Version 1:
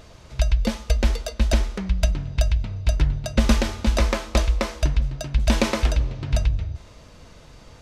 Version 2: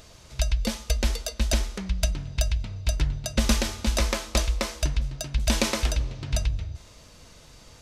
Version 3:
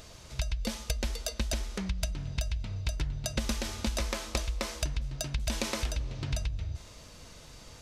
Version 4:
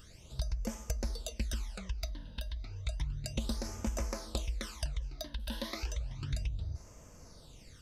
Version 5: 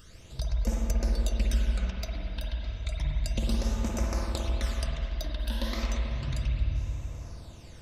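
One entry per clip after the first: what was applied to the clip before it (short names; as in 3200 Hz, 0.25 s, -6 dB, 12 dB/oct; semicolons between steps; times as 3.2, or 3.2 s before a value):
high shelf 3700 Hz +11.5 dB; gain -5 dB
compressor, threshold -28 dBFS, peak gain reduction 12 dB
phaser stages 12, 0.32 Hz, lowest notch 120–3900 Hz; gain -4 dB
spring tank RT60 2.7 s, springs 48/54 ms, chirp 65 ms, DRR -2.5 dB; gain +2 dB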